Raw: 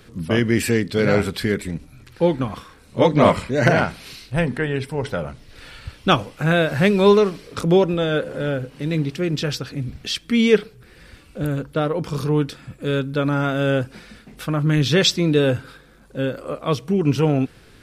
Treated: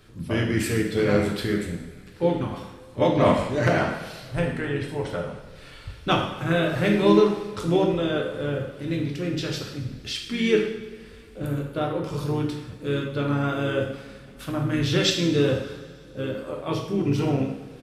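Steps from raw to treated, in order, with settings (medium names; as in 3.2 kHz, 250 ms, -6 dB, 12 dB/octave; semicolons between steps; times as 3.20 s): harmony voices -4 st -10 dB; two-slope reverb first 0.81 s, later 2.9 s, from -18 dB, DRR 0 dB; trim -8 dB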